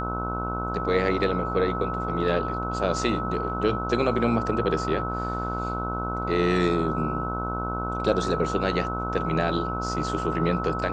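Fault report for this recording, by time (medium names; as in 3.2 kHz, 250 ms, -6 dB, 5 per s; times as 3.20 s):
buzz 60 Hz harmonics 25 -31 dBFS
whine 1.3 kHz -30 dBFS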